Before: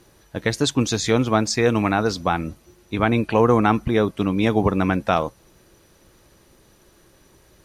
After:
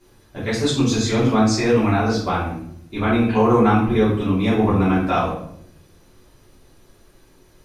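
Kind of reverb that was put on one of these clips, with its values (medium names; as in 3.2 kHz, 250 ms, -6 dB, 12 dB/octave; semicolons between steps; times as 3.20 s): simulated room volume 120 m³, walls mixed, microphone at 3.1 m; trim -11 dB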